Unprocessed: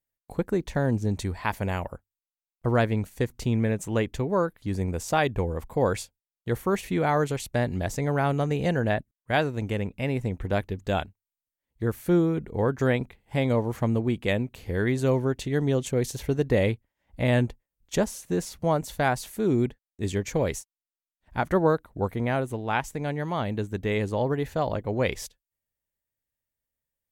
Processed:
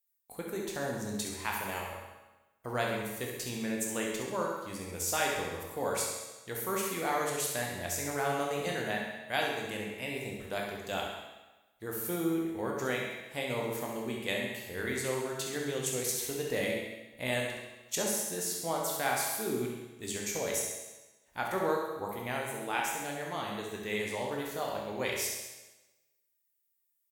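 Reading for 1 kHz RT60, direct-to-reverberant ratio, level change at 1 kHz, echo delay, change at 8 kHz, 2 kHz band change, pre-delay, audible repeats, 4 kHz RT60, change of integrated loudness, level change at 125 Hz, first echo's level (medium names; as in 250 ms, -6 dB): 1.2 s, -2.0 dB, -5.0 dB, 67 ms, +6.0 dB, -3.0 dB, 14 ms, 1, 1.1 s, -7.0 dB, -16.5 dB, -7.5 dB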